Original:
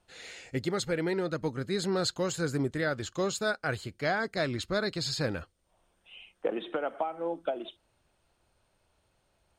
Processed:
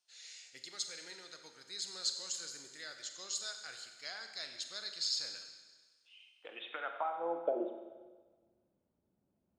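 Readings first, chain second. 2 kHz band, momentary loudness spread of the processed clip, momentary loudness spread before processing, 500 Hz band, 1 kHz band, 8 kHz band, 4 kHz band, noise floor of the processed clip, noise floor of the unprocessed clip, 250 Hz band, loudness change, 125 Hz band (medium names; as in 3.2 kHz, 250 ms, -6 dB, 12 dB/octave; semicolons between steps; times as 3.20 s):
-13.0 dB, 16 LU, 8 LU, -12.0 dB, -7.0 dB, -0.5 dB, -1.5 dB, -81 dBFS, -73 dBFS, -17.5 dB, -8.0 dB, under -35 dB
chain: band-pass sweep 5.6 kHz -> 230 Hz, 6.26–7.85 s; Schroeder reverb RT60 1.4 s, combs from 32 ms, DRR 5.5 dB; trim +2 dB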